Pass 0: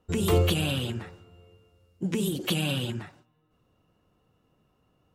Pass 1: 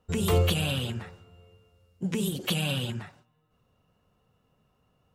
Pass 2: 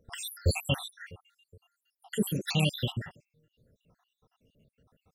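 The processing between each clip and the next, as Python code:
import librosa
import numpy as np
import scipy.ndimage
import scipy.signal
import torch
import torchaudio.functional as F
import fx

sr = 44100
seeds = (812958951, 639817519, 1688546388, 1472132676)

y1 = fx.peak_eq(x, sr, hz=320.0, db=-9.5, octaves=0.36)
y2 = fx.spec_dropout(y1, sr, seeds[0], share_pct=76)
y2 = y2 * librosa.db_to_amplitude(4.5)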